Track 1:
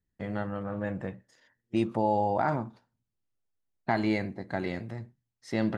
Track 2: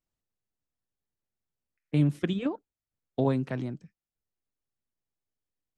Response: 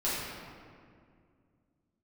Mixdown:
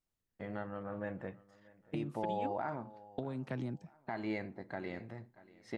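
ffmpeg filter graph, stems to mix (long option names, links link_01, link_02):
-filter_complex "[0:a]bass=frequency=250:gain=-5,treble=frequency=4000:gain=-9,adelay=200,volume=-5.5dB,asplit=2[link_01][link_02];[link_02]volume=-23dB[link_03];[1:a]acompressor=threshold=-32dB:ratio=10,volume=-1.5dB[link_04];[link_03]aecho=0:1:636|1272|1908|2544|3180:1|0.32|0.102|0.0328|0.0105[link_05];[link_01][link_04][link_05]amix=inputs=3:normalize=0,alimiter=level_in=2dB:limit=-24dB:level=0:latency=1:release=324,volume=-2dB"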